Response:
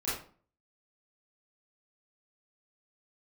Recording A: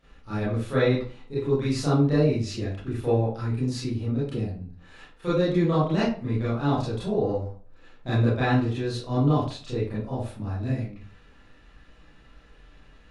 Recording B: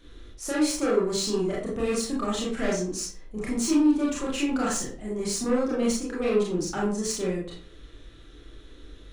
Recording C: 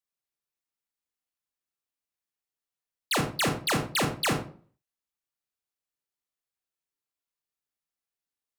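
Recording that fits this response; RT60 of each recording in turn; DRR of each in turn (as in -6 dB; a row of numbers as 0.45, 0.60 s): A; 0.45, 0.45, 0.45 s; -11.5, -5.5, 3.0 dB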